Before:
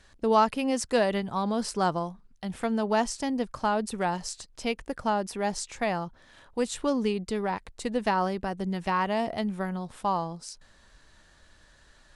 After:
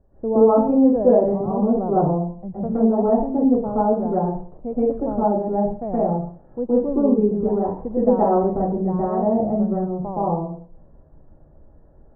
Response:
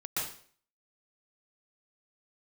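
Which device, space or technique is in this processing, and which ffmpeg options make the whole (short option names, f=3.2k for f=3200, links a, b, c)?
next room: -filter_complex "[0:a]asettb=1/sr,asplit=3[a][b][c];[a]atrim=end=7.574[d];[b]atrim=start=7.57:end=8.61,asetpts=PTS-STARTPTS,afade=t=in:d=0.004:c=qsin,afade=t=out:st=1.036:d=0.004:c=qsin,equalizer=f=1.5k:t=o:w=2.3:g=4[e];[c]atrim=start=8.606[f];[d][e]acrossfade=d=0.004:c1=hsin:c2=qsin[g];[g][f]acrossfade=d=0.004:c1=qsin:c2=hsin,lowpass=f=680:w=0.5412,lowpass=f=680:w=1.3066[h];[1:a]atrim=start_sample=2205[i];[h][i]afir=irnorm=-1:irlink=0,volume=7dB"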